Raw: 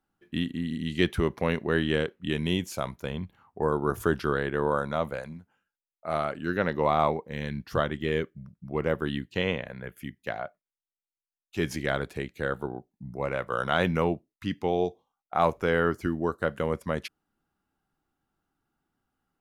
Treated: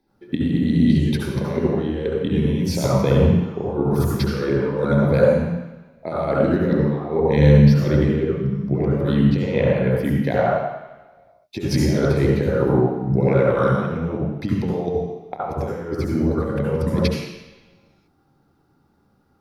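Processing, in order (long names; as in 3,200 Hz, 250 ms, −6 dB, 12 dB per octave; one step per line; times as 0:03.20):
compressor whose output falls as the input rises −32 dBFS, ratio −0.5
convolution reverb RT60 1.0 s, pre-delay 64 ms, DRR −5.5 dB
level −2 dB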